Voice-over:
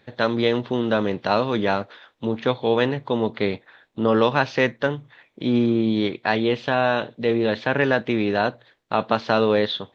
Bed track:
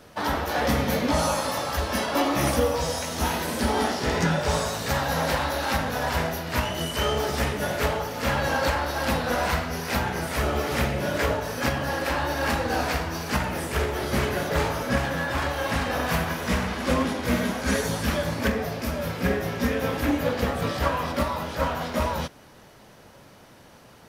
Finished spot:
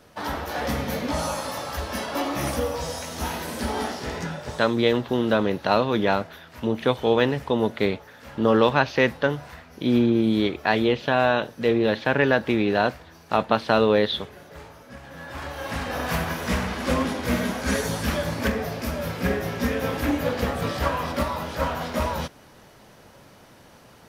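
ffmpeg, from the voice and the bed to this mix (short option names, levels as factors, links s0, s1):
-filter_complex "[0:a]adelay=4400,volume=1[s0];[1:a]volume=5.62,afade=t=out:st=3.81:d=0.9:silence=0.177828,afade=t=in:st=15.01:d=1.28:silence=0.11885[s1];[s0][s1]amix=inputs=2:normalize=0"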